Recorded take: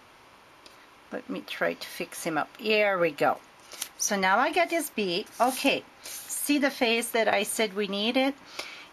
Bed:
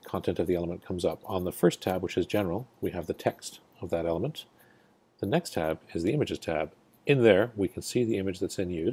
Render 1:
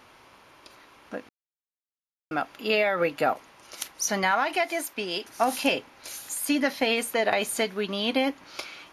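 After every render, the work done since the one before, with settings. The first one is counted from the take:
0:01.29–0:02.31: silence
0:04.31–0:05.25: low-shelf EQ 330 Hz −9.5 dB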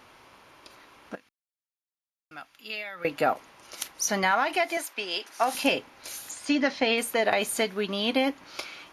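0:01.15–0:03.05: guitar amp tone stack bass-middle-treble 5-5-5
0:04.77–0:05.55: meter weighting curve A
0:06.31–0:06.98: low-pass filter 6,700 Hz 24 dB per octave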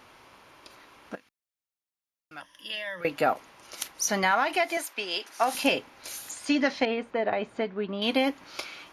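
0:02.40–0:03.01: EQ curve with evenly spaced ripples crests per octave 1.2, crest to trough 17 dB
0:06.85–0:08.02: head-to-tape spacing loss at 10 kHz 39 dB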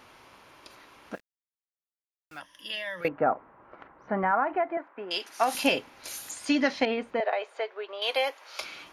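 0:01.14–0:02.39: centre clipping without the shift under −52 dBFS
0:03.08–0:05.11: low-pass filter 1,500 Hz 24 dB per octave
0:07.20–0:08.61: Butterworth high-pass 450 Hz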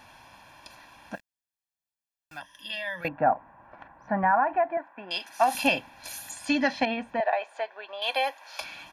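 comb filter 1.2 ms, depth 76%
dynamic equaliser 6,100 Hz, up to −4 dB, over −47 dBFS, Q 0.82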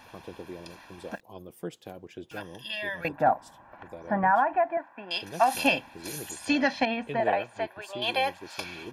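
mix in bed −14 dB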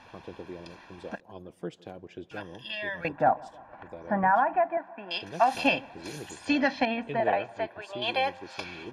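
high-frequency loss of the air 80 metres
delay with a low-pass on its return 160 ms, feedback 59%, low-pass 1,400 Hz, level −23 dB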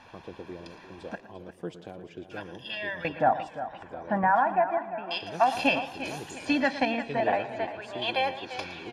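single-tap delay 114 ms −14 dB
feedback echo with a swinging delay time 349 ms, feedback 41%, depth 79 cents, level −12.5 dB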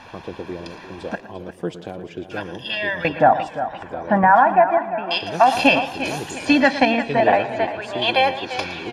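level +10 dB
brickwall limiter −3 dBFS, peak gain reduction 2.5 dB

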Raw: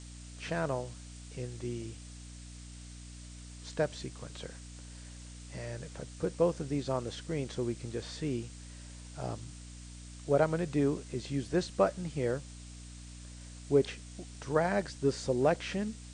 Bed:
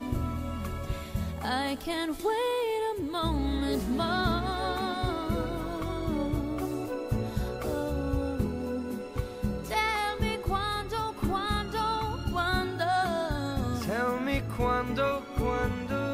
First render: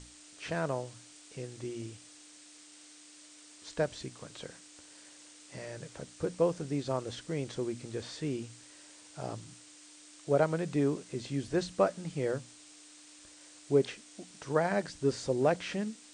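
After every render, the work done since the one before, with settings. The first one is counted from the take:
mains-hum notches 60/120/180/240 Hz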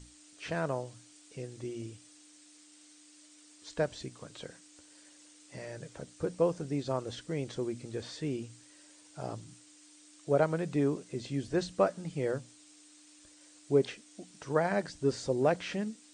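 broadband denoise 6 dB, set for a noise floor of −55 dBFS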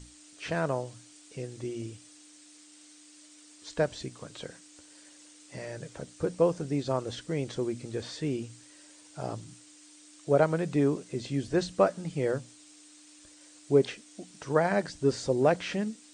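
level +3.5 dB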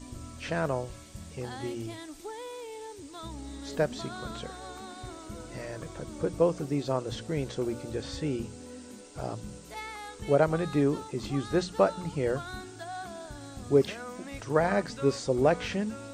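mix in bed −12.5 dB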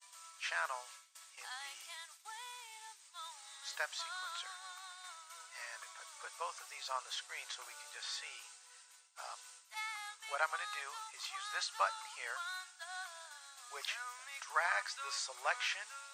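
downward expander −39 dBFS
inverse Chebyshev high-pass filter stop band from 300 Hz, stop band 60 dB

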